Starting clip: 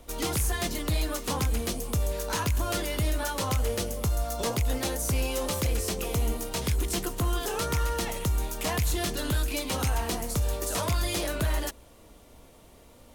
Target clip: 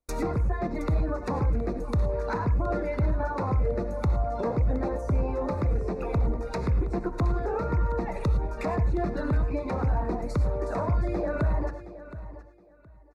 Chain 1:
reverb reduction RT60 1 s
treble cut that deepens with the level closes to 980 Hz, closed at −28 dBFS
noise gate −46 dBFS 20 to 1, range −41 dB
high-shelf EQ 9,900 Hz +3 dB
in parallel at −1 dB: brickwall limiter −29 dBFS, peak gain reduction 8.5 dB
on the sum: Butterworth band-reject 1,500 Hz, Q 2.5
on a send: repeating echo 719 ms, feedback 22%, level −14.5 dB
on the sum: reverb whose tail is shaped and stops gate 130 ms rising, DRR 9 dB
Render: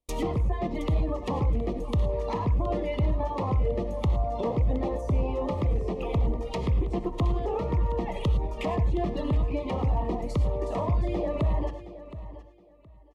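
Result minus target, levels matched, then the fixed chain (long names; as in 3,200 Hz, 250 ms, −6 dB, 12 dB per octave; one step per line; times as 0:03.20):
4,000 Hz band +6.5 dB
reverb reduction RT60 1 s
treble cut that deepens with the level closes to 980 Hz, closed at −28 dBFS
noise gate −46 dBFS 20 to 1, range −41 dB
high-shelf EQ 9,900 Hz +3 dB
in parallel at −1 dB: brickwall limiter −29 dBFS, peak gain reduction 8.5 dB
on the sum: Butterworth band-reject 3,100 Hz, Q 2.5
on a send: repeating echo 719 ms, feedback 22%, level −14.5 dB
on the sum: reverb whose tail is shaped and stops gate 130 ms rising, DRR 9 dB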